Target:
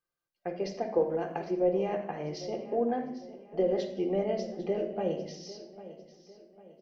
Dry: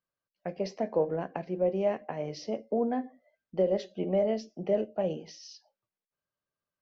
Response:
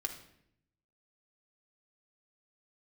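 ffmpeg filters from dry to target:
-filter_complex "[0:a]asettb=1/sr,asplit=3[s0][s1][s2];[s0]atrim=end=0.984[s3];[s1]atrim=start=0.98:end=1.51,asetpts=PTS-STARTPTS,afade=t=in:d=0.004:c=qsin,afade=t=out:st=0.526:d=0.004:c=qsin,bass=f=250:g=-4,treble=f=4000:g=10[s4];[s2]atrim=start=1.506[s5];[s3][s4]acrossfade=d=0.004:c1=hsin:c2=qsin[s6];[s6][s5]acrossfade=d=0.004:c1=qsin:c2=hsin,aecho=1:1:800|1600|2400|3200:0.158|0.065|0.0266|0.0109[s7];[1:a]atrim=start_sample=2205[s8];[s7][s8]afir=irnorm=-1:irlink=0"

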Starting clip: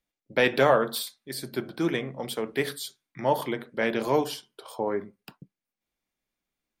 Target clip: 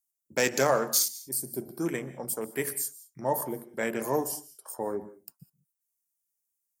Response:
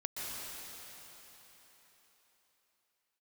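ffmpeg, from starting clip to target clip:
-filter_complex "[0:a]afwtdn=0.0141,aexciter=amount=12.9:drive=9.4:freq=5700,asplit=2[s0][s1];[1:a]atrim=start_sample=2205,afade=t=out:st=0.26:d=0.01,atrim=end_sample=11907[s2];[s1][s2]afir=irnorm=-1:irlink=0,volume=0.251[s3];[s0][s3]amix=inputs=2:normalize=0,volume=0.531"

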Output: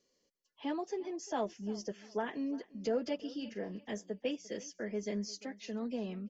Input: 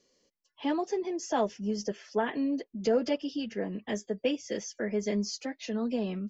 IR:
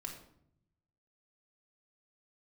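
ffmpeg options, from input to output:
-filter_complex "[0:a]asettb=1/sr,asplit=3[s0][s1][s2];[s0]atrim=end=3.154[s3];[s1]atrim=start=3.15:end=3.72,asetpts=PTS-STARTPTS,afade=t=in:d=0.004:c=qsin,afade=t=out:st=0.566:d=0.004:c=qsin,asplit=2[s4][s5];[s5]adelay=44,volume=0.299[s6];[s4][s6]amix=inputs=2:normalize=0,atrim=end_sample=25137[s7];[s2]atrim=start=3.716[s8];[s3][s7]acrossfade=d=0.004:c1=hsin:c2=qsin[s9];[s9][s8]acrossfade=d=0.004:c1=qsin:c2=hsin,asplit=2[s10][s11];[s11]aecho=0:1:348|696|1044:0.1|0.032|0.0102[s12];[s10][s12]amix=inputs=2:normalize=0,volume=0.447"

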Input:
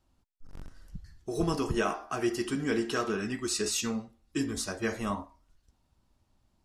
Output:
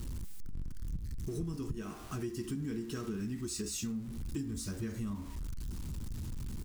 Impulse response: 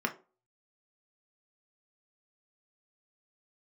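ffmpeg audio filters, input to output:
-af "aeval=exprs='val(0)+0.5*0.0158*sgn(val(0))':c=same,firequalizer=gain_entry='entry(150,0);entry(660,-24);entry(1000,-18);entry(7800,-10)':delay=0.05:min_phase=1,acompressor=threshold=0.01:ratio=6,volume=1.88"

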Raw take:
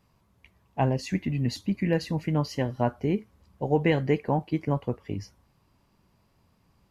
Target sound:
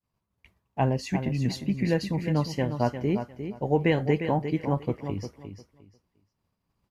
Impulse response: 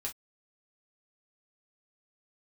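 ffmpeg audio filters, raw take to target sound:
-filter_complex "[0:a]agate=range=0.0224:threshold=0.00178:ratio=3:detection=peak,asplit=2[s0][s1];[s1]aecho=0:1:353|706|1059:0.355|0.0745|0.0156[s2];[s0][s2]amix=inputs=2:normalize=0"

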